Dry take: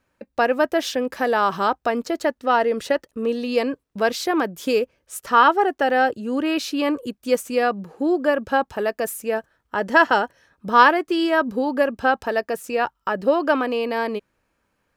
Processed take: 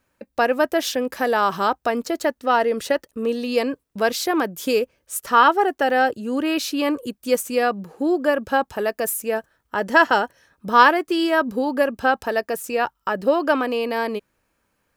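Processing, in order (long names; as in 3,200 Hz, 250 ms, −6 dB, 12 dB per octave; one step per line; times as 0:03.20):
high-shelf EQ 7,800 Hz +9 dB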